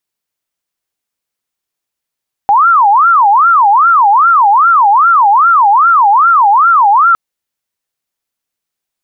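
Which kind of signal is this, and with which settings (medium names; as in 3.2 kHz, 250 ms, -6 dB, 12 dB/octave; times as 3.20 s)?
siren wail 797–1390 Hz 2.5 per s sine -4 dBFS 4.66 s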